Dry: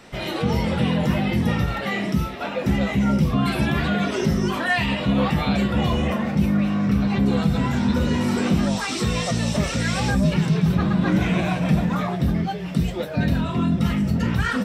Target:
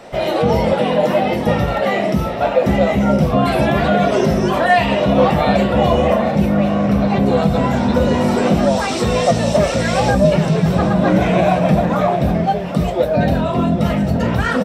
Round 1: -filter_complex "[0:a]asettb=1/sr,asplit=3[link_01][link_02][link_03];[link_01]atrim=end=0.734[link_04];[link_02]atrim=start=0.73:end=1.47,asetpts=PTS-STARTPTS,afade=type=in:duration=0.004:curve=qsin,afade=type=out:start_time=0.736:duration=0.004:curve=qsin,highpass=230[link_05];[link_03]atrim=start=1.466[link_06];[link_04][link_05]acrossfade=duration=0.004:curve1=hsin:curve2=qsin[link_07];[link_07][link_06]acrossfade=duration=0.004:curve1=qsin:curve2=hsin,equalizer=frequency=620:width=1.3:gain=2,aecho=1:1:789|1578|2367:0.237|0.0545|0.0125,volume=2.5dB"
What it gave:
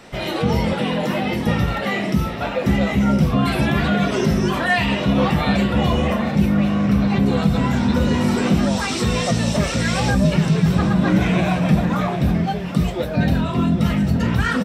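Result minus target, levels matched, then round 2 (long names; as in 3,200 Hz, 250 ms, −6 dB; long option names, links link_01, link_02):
500 Hz band −5.5 dB
-filter_complex "[0:a]asettb=1/sr,asplit=3[link_01][link_02][link_03];[link_01]atrim=end=0.734[link_04];[link_02]atrim=start=0.73:end=1.47,asetpts=PTS-STARTPTS,afade=type=in:duration=0.004:curve=qsin,afade=type=out:start_time=0.736:duration=0.004:curve=qsin,highpass=230[link_05];[link_03]atrim=start=1.466[link_06];[link_04][link_05]acrossfade=duration=0.004:curve1=hsin:curve2=qsin[link_07];[link_07][link_06]acrossfade=duration=0.004:curve1=qsin:curve2=hsin,equalizer=frequency=620:width=1.3:gain=13.5,aecho=1:1:789|1578|2367:0.237|0.0545|0.0125,volume=2.5dB"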